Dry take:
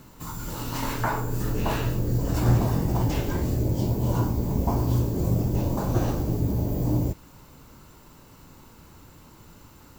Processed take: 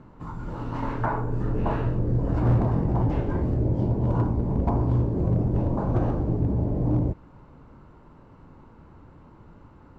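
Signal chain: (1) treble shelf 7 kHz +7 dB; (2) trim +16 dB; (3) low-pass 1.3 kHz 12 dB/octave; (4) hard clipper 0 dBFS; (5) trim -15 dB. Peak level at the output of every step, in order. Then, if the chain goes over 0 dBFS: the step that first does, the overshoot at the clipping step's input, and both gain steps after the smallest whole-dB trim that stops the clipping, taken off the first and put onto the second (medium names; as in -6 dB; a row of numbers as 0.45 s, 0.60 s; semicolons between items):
-9.5 dBFS, +6.5 dBFS, +6.0 dBFS, 0.0 dBFS, -15.0 dBFS; step 2, 6.0 dB; step 2 +10 dB, step 5 -9 dB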